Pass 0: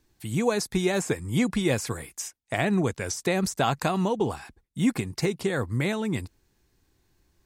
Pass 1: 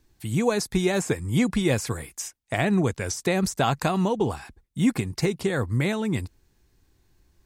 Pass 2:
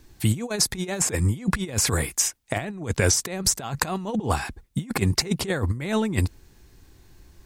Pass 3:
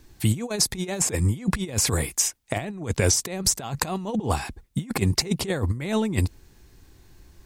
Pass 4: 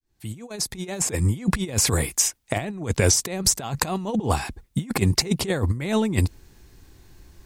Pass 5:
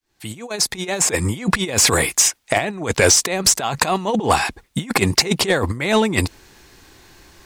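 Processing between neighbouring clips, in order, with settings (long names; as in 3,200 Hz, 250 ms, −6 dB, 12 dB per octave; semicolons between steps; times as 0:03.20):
low-shelf EQ 100 Hz +6 dB; level +1 dB
compressor whose output falls as the input rises −29 dBFS, ratio −0.5; level +5.5 dB
dynamic equaliser 1,500 Hz, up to −5 dB, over −42 dBFS, Q 1.9
fade in at the beginning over 1.44 s; level +2 dB
mid-hump overdrive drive 17 dB, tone 5,200 Hz, clips at −1 dBFS; level +1 dB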